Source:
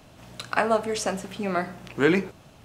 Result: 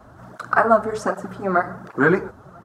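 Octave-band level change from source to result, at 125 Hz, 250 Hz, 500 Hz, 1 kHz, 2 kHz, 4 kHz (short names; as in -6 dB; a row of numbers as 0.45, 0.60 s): +4.0, +3.0, +4.5, +8.0, +6.0, -10.5 dB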